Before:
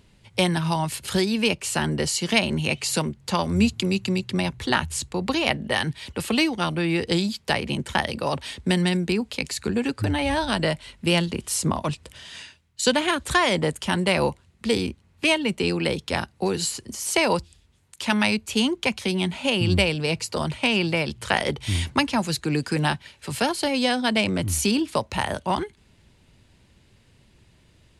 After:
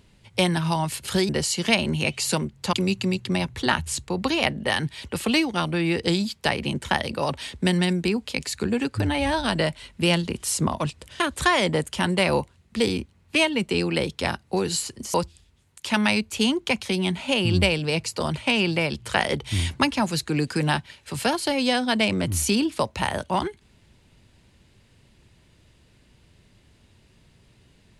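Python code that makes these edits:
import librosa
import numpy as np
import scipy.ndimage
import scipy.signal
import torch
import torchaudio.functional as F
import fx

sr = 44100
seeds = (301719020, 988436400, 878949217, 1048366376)

y = fx.edit(x, sr, fx.cut(start_s=1.29, length_s=0.64),
    fx.cut(start_s=3.37, length_s=0.4),
    fx.cut(start_s=12.24, length_s=0.85),
    fx.cut(start_s=17.03, length_s=0.27), tone=tone)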